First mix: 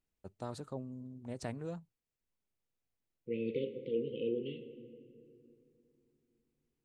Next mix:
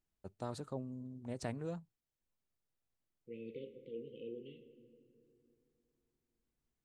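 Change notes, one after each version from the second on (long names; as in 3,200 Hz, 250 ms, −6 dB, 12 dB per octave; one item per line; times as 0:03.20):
second voice −11.0 dB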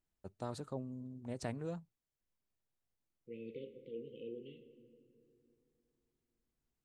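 nothing changed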